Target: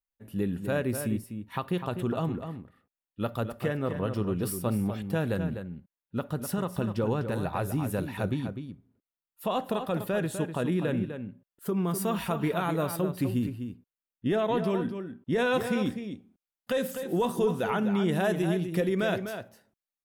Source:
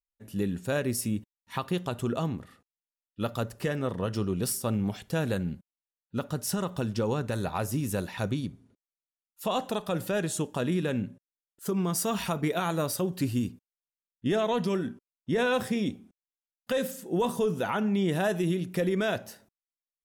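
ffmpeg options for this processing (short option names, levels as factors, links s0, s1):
-filter_complex "[0:a]asetnsamples=n=441:p=0,asendcmd='15.32 equalizer g -3.5',equalizer=f=6300:t=o:w=1.2:g=-12,asplit=2[s0][s1];[s1]adelay=250.7,volume=0.398,highshelf=f=4000:g=-5.64[s2];[s0][s2]amix=inputs=2:normalize=0"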